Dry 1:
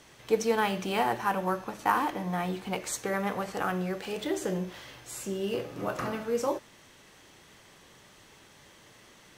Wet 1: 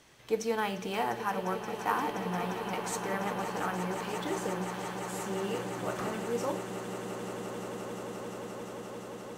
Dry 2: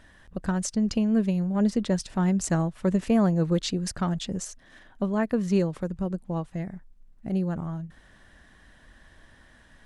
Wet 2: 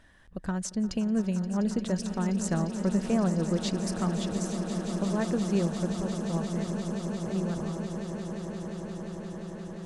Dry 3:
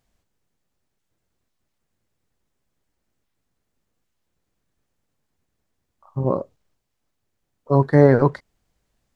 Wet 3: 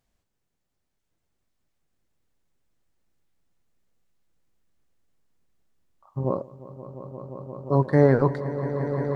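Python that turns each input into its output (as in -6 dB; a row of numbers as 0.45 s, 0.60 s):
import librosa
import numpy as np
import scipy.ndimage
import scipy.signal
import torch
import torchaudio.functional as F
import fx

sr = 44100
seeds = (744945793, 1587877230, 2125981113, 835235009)

y = fx.echo_swell(x, sr, ms=175, loudest=8, wet_db=-13.0)
y = F.gain(torch.from_numpy(y), -4.5).numpy()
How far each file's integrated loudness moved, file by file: -3.5 LU, -3.5 LU, -5.0 LU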